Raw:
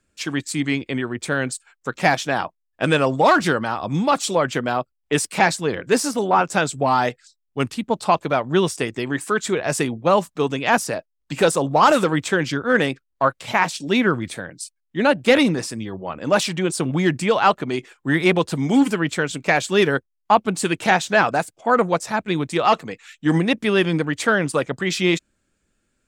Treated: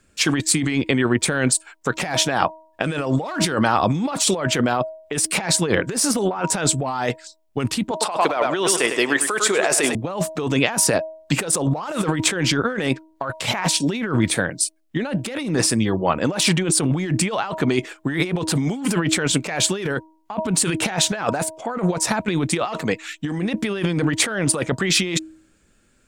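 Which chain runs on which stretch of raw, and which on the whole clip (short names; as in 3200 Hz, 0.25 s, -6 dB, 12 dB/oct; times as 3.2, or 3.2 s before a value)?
7.91–9.95 HPF 430 Hz + feedback echo 0.101 s, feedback 37%, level -12 dB
whole clip: de-hum 317.6 Hz, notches 3; dynamic EQ 9400 Hz, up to +7 dB, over -52 dBFS, Q 7.1; negative-ratio compressor -26 dBFS, ratio -1; gain +4.5 dB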